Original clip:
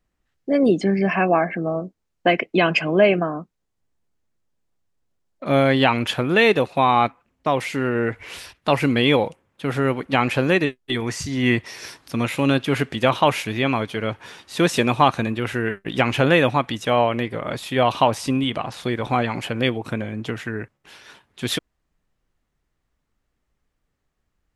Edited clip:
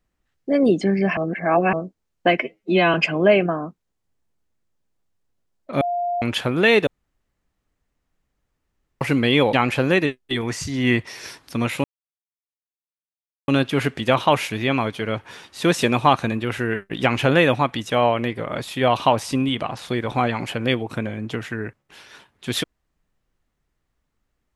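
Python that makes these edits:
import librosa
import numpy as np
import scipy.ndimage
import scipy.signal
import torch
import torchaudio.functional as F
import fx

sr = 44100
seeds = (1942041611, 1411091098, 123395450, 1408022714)

y = fx.edit(x, sr, fx.reverse_span(start_s=1.17, length_s=0.56),
    fx.stretch_span(start_s=2.4, length_s=0.27, factor=2.0),
    fx.bleep(start_s=5.54, length_s=0.41, hz=702.0, db=-20.5),
    fx.room_tone_fill(start_s=6.6, length_s=2.14),
    fx.cut(start_s=9.26, length_s=0.86),
    fx.insert_silence(at_s=12.43, length_s=1.64), tone=tone)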